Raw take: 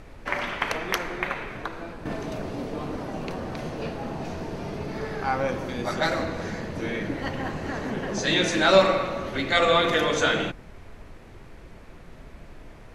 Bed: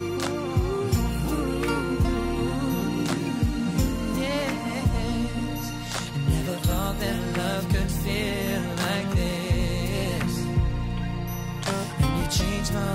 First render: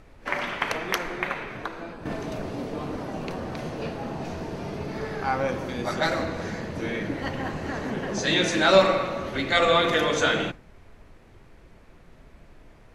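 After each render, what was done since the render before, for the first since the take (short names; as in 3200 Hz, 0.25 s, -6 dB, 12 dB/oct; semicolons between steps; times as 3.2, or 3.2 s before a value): noise print and reduce 6 dB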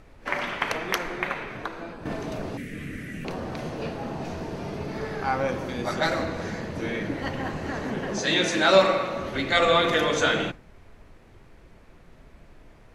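2.57–3.25 EQ curve 210 Hz 0 dB, 530 Hz -13 dB, 910 Hz -28 dB, 1900 Hz +11 dB, 4500 Hz -9 dB, 8500 Hz +6 dB; 8.17–9.14 low shelf 100 Hz -10 dB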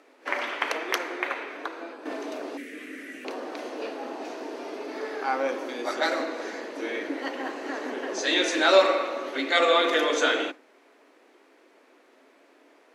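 Chebyshev high-pass 270 Hz, order 5; high shelf 11000 Hz -4 dB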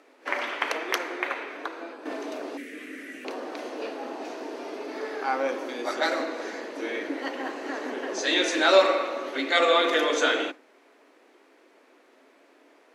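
nothing audible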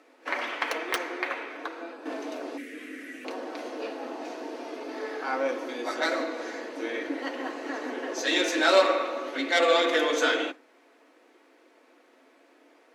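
self-modulated delay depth 0.057 ms; notch comb 200 Hz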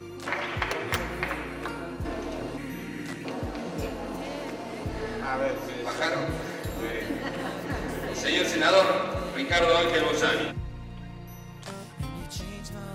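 add bed -12 dB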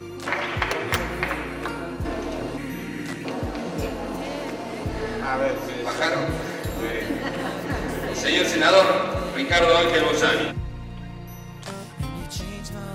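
gain +4.5 dB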